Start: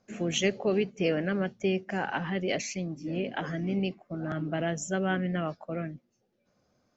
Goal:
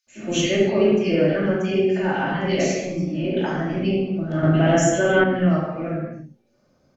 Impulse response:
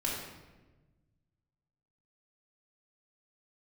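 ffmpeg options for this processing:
-filter_complex "[0:a]acrossover=split=2300[s0][s1];[s0]adelay=70[s2];[s2][s1]amix=inputs=2:normalize=0[s3];[1:a]atrim=start_sample=2205,afade=t=out:st=0.34:d=0.01,atrim=end_sample=15435,asetrate=40572,aresample=44100[s4];[s3][s4]afir=irnorm=-1:irlink=0,asettb=1/sr,asplit=3[s5][s6][s7];[s5]atrim=end=4.434[s8];[s6]atrim=start=4.43:end=5.24,asetpts=PTS-STARTPTS,afade=t=in:d=0.004:c=qsin,afade=t=out:st=0.806:d=0.004:c=qsin,acontrast=40[s9];[s7]atrim=start=5.236[s10];[s8][s9]acrossfade=d=0.004:c1=hsin:c2=qsin[s11];[s11][s10]acrossfade=d=0.004:c1=qsin:c2=hsin,volume=1.33"

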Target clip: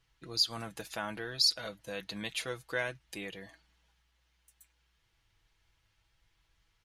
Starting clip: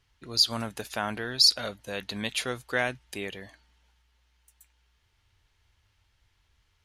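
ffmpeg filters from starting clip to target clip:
-filter_complex "[0:a]aecho=1:1:6.1:0.56,asplit=2[s0][s1];[s1]acompressor=threshold=0.0112:ratio=6,volume=0.75[s2];[s0][s2]amix=inputs=2:normalize=0,volume=0.355"

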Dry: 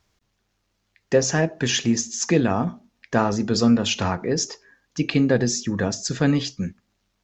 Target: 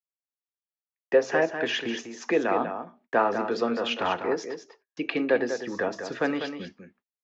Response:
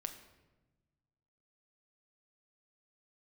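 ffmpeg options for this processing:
-filter_complex "[0:a]agate=range=0.0112:threshold=0.00708:ratio=16:detection=peak,lowpass=6200,acrossover=split=280 3100:gain=0.0794 1 0.1[s0][s1][s2];[s0][s1][s2]amix=inputs=3:normalize=0,acrossover=split=290|1500[s3][s4][s5];[s3]acompressor=threshold=0.0126:ratio=6[s6];[s6][s4][s5]amix=inputs=3:normalize=0,aecho=1:1:197:0.376"

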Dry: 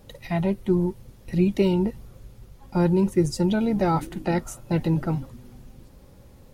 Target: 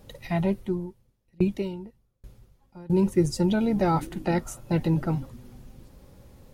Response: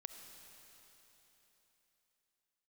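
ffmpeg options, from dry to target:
-filter_complex "[0:a]asettb=1/sr,asplit=3[s0][s1][s2];[s0]atrim=end=0.574[s3];[s1]atrim=start=0.57:end=2.9,asetpts=PTS-STARTPTS,afade=t=in:d=0.004:c=qsin,afade=t=out:st=2.326:d=0.004:c=qsin,aeval=exprs='val(0)*pow(10,-32*if(lt(mod(1.2*n/s,1),2*abs(1.2)/1000),1-mod(1.2*n/s,1)/(2*abs(1.2)/1000),(mod(1.2*n/s,1)-2*abs(1.2)/1000)/(1-2*abs(1.2)/1000))/20)':c=same[s4];[s2]atrim=start=2.896[s5];[s3][s4]acrossfade=d=0.004:c1=hsin:c2=qsin[s6];[s6][s5]acrossfade=d=0.004:c1=qsin:c2=hsin,volume=0.891"

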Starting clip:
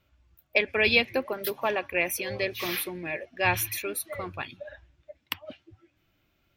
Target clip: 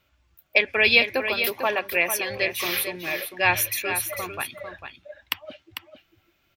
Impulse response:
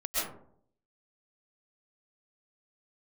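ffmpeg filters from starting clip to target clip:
-filter_complex "[0:a]lowshelf=f=500:g=-8,asplit=2[s0][s1];[s1]aecho=0:1:448:0.376[s2];[s0][s2]amix=inputs=2:normalize=0,volume=1.88"

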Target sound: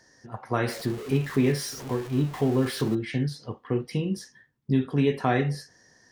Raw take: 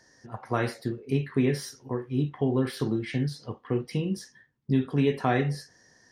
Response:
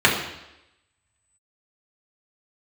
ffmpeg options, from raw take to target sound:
-filter_complex "[0:a]asettb=1/sr,asplit=3[s0][s1][s2];[s0]atrim=end=0.684[s3];[s1]atrim=start=0.68:end=2.95,asetpts=PTS-STARTPTS,afade=t=in:d=0.004:c=qsin,afade=t=out:st=2.266:d=0.004:c=qsin,aeval=exprs='val(0)+0.5*0.0168*sgn(val(0))':c=same[s4];[s2]atrim=start=2.946[s5];[s3][s4]acrossfade=d=0.004:c1=hsin:c2=qsin[s6];[s6][s5]acrossfade=d=0.004:c1=qsin:c2=hsin,volume=1.12"

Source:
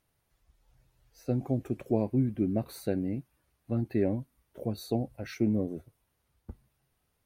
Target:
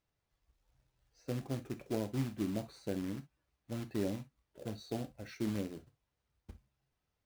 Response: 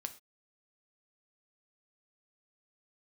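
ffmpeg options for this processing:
-filter_complex "[0:a]lowpass=f=7100:w=0.5412,lowpass=f=7100:w=1.3066,acrusher=bits=3:mode=log:mix=0:aa=0.000001[s0];[1:a]atrim=start_sample=2205,atrim=end_sample=3087[s1];[s0][s1]afir=irnorm=-1:irlink=0,volume=0.501"

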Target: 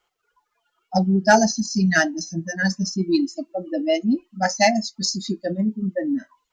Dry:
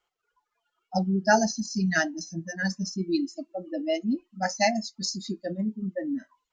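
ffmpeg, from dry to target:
-af "acontrast=75"

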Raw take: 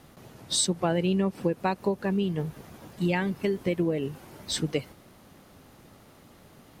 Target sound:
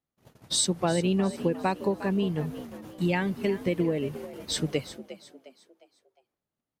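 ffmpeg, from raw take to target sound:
-filter_complex "[0:a]agate=range=0.0141:threshold=0.00501:ratio=16:detection=peak,asplit=5[s0][s1][s2][s3][s4];[s1]adelay=356,afreqshift=60,volume=0.2[s5];[s2]adelay=712,afreqshift=120,volume=0.0776[s6];[s3]adelay=1068,afreqshift=180,volume=0.0302[s7];[s4]adelay=1424,afreqshift=240,volume=0.0119[s8];[s0][s5][s6][s7][s8]amix=inputs=5:normalize=0"

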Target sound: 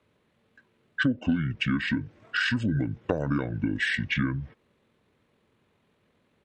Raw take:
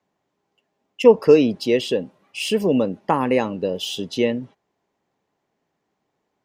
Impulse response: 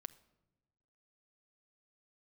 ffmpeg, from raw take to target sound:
-af "asetrate=24750,aresample=44100,atempo=1.7818,equalizer=f=2400:t=o:w=1.5:g=7.5,acompressor=threshold=0.0282:ratio=5,volume=2"

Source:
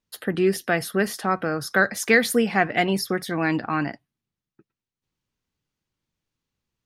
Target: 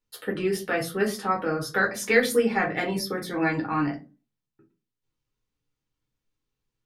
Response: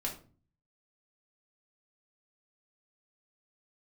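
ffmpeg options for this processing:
-filter_complex "[0:a]asettb=1/sr,asplit=3[s0][s1][s2];[s0]atrim=end=2.414[s3];[s1]atrim=start=2.41:end=3.76,asetpts=PTS-STARTPTS,afade=t=in:d=0.004:c=qsin,afade=t=out:st=1.346:d=0.004:c=qsin,bandreject=f=2900:w=8.5[s4];[s2]atrim=start=3.756[s5];[s3][s4]acrossfade=d=0.004:c1=hsin:c2=qsin[s6];[s6][s5]acrossfade=d=0.004:c1=qsin:c2=hsin[s7];[1:a]atrim=start_sample=2205,asetrate=74970,aresample=44100[s8];[s7][s8]afir=irnorm=-1:irlink=0"

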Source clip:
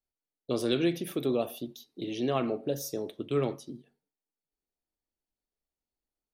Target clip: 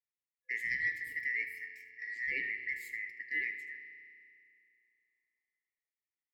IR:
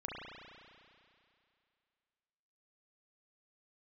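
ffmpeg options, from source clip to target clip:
-filter_complex "[0:a]asplit=2[s0][s1];[1:a]atrim=start_sample=2205,adelay=77[s2];[s1][s2]afir=irnorm=-1:irlink=0,volume=0.316[s3];[s0][s3]amix=inputs=2:normalize=0,aeval=exprs='val(0)*sin(2*PI*1600*n/s)':c=same,afftfilt=real='re*(1-between(b*sr/4096,510,1700))':imag='im*(1-between(b*sr/4096,510,1700))':win_size=4096:overlap=0.75,highshelf=f=2800:t=q:w=3:g=-6.5,volume=0.501"

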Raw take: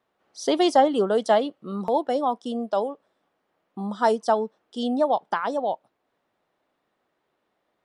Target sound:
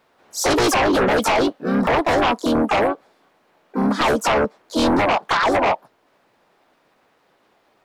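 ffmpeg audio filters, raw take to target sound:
-filter_complex "[0:a]asplit=4[s0][s1][s2][s3];[s1]asetrate=52444,aresample=44100,atempo=0.840896,volume=0.562[s4];[s2]asetrate=58866,aresample=44100,atempo=0.749154,volume=0.794[s5];[s3]asetrate=88200,aresample=44100,atempo=0.5,volume=0.141[s6];[s0][s4][s5][s6]amix=inputs=4:normalize=0,alimiter=limit=0.211:level=0:latency=1:release=35,aeval=exprs='0.211*sin(PI/2*2.24*val(0)/0.211)':c=same"

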